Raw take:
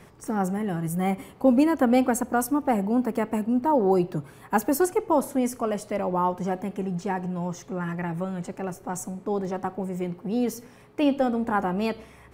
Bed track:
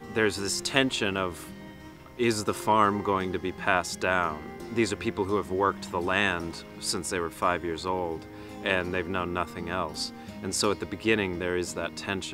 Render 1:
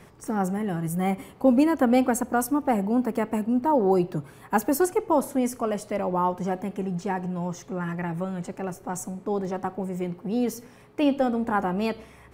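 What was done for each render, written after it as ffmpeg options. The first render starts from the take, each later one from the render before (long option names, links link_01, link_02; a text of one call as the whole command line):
ffmpeg -i in.wav -af anull out.wav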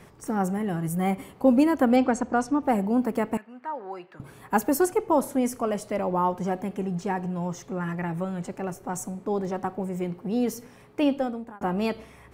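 ffmpeg -i in.wav -filter_complex "[0:a]asettb=1/sr,asplit=3[link_01][link_02][link_03];[link_01]atrim=end=1.964[link_04];[link_02]atrim=start=1.96:end=2.63,asetpts=PTS-STARTPTS,afade=type=in:duration=0.004:curve=qsin,afade=type=out:start_time=0.666:duration=0.004:curve=qsin,lowpass=frequency=6700:width=0.5412,lowpass=frequency=6700:width=1.3066[link_05];[link_03]atrim=start=2.626[link_06];[link_04][link_05]acrossfade=duration=0.004:curve1=hsin:curve2=qsin[link_07];[link_07][link_06]acrossfade=duration=0.004:curve1=qsin:curve2=hsin,asettb=1/sr,asplit=3[link_08][link_09][link_10];[link_08]atrim=end=3.374[link_11];[link_09]atrim=start=3.37:end=4.2,asetpts=PTS-STARTPTS,afade=type=in:duration=0.004:curve=qsin,afade=type=out:start_time=0.826:duration=0.004:curve=qsin,bandpass=frequency=1800:width_type=q:width=1.8[link_12];[link_10]atrim=start=4.196[link_13];[link_11][link_12]acrossfade=duration=0.004:curve1=hsin:curve2=qsin[link_14];[link_14][link_13]acrossfade=duration=0.004:curve1=qsin:curve2=hsin,asplit=2[link_15][link_16];[link_15]atrim=end=11.61,asetpts=PTS-STARTPTS,afade=type=out:start_time=11.01:duration=0.6[link_17];[link_16]atrim=start=11.61,asetpts=PTS-STARTPTS,afade=type=in:duration=0.004:curve=hsin[link_18];[link_17][link_18]concat=n=2:v=0:a=1" out.wav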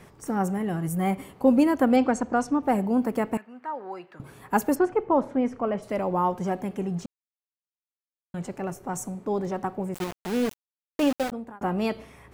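ffmpeg -i in.wav -filter_complex "[0:a]asplit=3[link_01][link_02][link_03];[link_01]afade=type=out:start_time=4.74:duration=0.02[link_04];[link_02]lowpass=2400,afade=type=in:start_time=4.74:duration=0.02,afade=type=out:start_time=5.82:duration=0.02[link_05];[link_03]afade=type=in:start_time=5.82:duration=0.02[link_06];[link_04][link_05][link_06]amix=inputs=3:normalize=0,asettb=1/sr,asplit=3[link_07][link_08][link_09];[link_07]atrim=end=9.944[link_10];[link_08]atrim=start=9.94:end=11.32,asetpts=PTS-STARTPTS,afade=type=in:duration=0.004:curve=qsin,afade=type=out:start_time=1.376:duration=0.004:curve=qsin,aeval=exprs='val(0)*gte(abs(val(0)),0.0447)':channel_layout=same[link_11];[link_09]atrim=start=11.316[link_12];[link_10][link_11]acrossfade=duration=0.004:curve1=hsin:curve2=qsin[link_13];[link_13][link_12]acrossfade=duration=0.004:curve1=qsin:curve2=hsin,asplit=3[link_14][link_15][link_16];[link_14]atrim=end=7.06,asetpts=PTS-STARTPTS,afade=type=out:start_time=7.056:duration=0.004:curve=hsin[link_17];[link_15]atrim=start=7.06:end=8.34,asetpts=PTS-STARTPTS,volume=0[link_18];[link_16]atrim=start=8.34,asetpts=PTS-STARTPTS,afade=type=in:duration=0.004:curve=hsin[link_19];[link_17][link_18][link_19]concat=n=3:v=0:a=1" out.wav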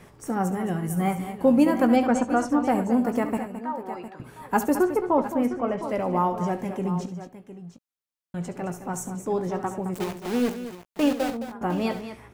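ffmpeg -i in.wav -filter_complex "[0:a]asplit=2[link_01][link_02];[link_02]adelay=17,volume=-11dB[link_03];[link_01][link_03]amix=inputs=2:normalize=0,aecho=1:1:69|216|708:0.224|0.282|0.224" out.wav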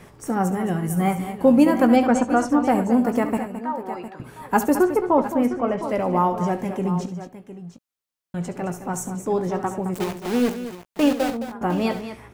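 ffmpeg -i in.wav -af "volume=3.5dB" out.wav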